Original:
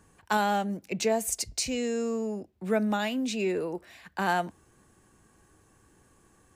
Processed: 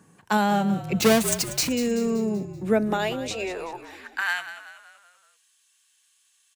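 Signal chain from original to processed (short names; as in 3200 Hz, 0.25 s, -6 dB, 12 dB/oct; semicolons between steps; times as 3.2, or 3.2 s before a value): 1–1.69 half-waves squared off; high-pass sweep 160 Hz -> 3300 Hz, 2.35–4.75; frequency-shifting echo 0.191 s, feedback 48%, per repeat -44 Hz, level -12.5 dB; gain +2.5 dB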